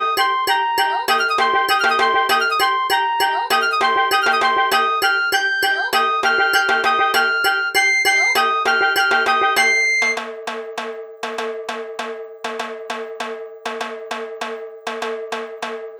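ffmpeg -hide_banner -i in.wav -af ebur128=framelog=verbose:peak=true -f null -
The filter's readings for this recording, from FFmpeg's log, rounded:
Integrated loudness:
  I:         -16.8 LUFS
  Threshold: -27.5 LUFS
Loudness range:
  LRA:        12.2 LU
  Threshold: -37.2 LUFS
  LRA low:   -27.2 LUFS
  LRA high:  -15.0 LUFS
True peak:
  Peak:       -2.6 dBFS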